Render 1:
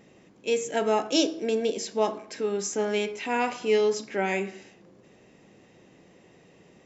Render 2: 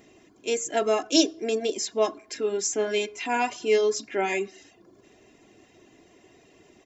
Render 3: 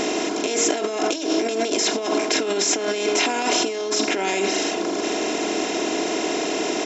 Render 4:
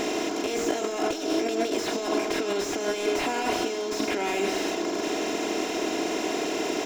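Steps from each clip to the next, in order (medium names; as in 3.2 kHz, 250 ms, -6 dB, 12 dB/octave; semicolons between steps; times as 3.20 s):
reverb removal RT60 0.51 s; treble shelf 6.1 kHz +7.5 dB; comb 2.9 ms, depth 59%
spectral levelling over time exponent 0.4; compressor with a negative ratio -25 dBFS, ratio -1; trim +3 dB
crossover distortion -43 dBFS; reverberation RT60 3.2 s, pre-delay 102 ms, DRR 12 dB; slew-rate limiter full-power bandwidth 150 Hz; trim -3.5 dB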